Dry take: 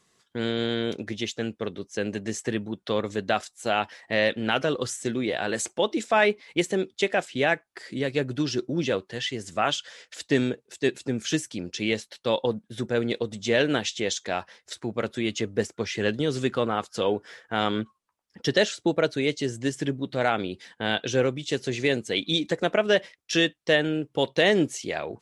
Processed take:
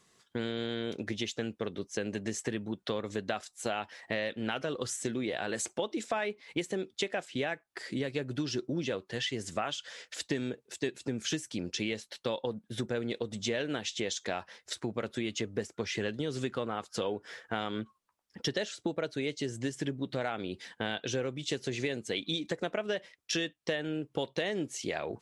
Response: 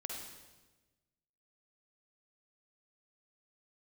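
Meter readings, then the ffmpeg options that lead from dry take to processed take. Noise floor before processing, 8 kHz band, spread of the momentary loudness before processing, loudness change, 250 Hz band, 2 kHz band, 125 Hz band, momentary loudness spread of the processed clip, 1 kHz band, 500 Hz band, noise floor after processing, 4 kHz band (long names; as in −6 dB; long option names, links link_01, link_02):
−72 dBFS, −4.5 dB, 9 LU, −8.5 dB, −7.5 dB, −9.5 dB, −7.0 dB, 4 LU, −10.0 dB, −9.0 dB, −74 dBFS, −7.5 dB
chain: -af "acompressor=threshold=-30dB:ratio=6"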